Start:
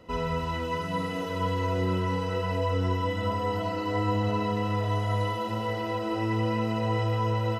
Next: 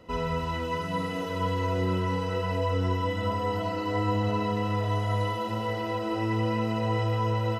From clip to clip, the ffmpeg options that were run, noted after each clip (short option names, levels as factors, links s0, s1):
-af anull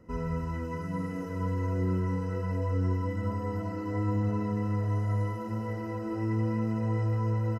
-af "firequalizer=gain_entry='entry(230,0);entry(670,-11);entry(1700,-5);entry(3500,-27);entry(5200,-8)':delay=0.05:min_phase=1"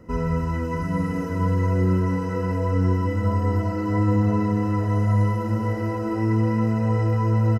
-af "aecho=1:1:667:0.316,volume=2.66"